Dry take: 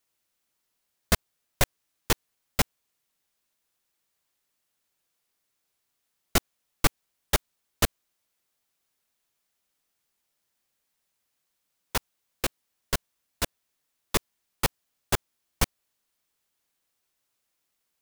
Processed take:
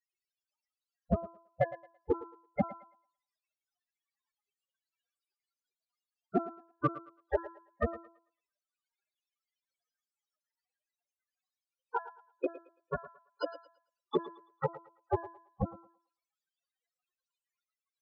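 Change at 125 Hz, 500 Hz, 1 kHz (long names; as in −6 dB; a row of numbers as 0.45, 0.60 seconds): −6.5, +1.0, −3.0 decibels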